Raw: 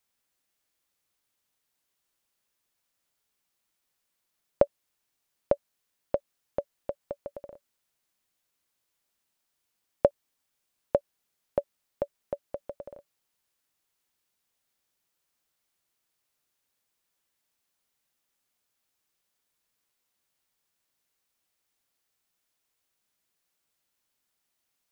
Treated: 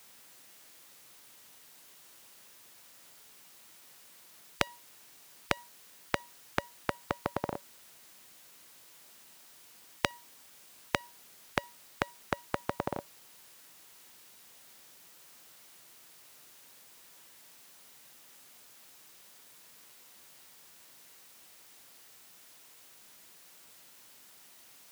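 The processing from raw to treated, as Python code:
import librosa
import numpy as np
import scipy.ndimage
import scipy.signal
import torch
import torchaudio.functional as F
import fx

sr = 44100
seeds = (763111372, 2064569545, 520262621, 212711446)

y = scipy.signal.sosfilt(scipy.signal.butter(2, 110.0, 'highpass', fs=sr, output='sos'), x)
y = fx.comb_fb(y, sr, f0_hz=950.0, decay_s=0.26, harmonics='all', damping=0.0, mix_pct=50)
y = fx.spectral_comp(y, sr, ratio=10.0)
y = y * librosa.db_to_amplitude(10.5)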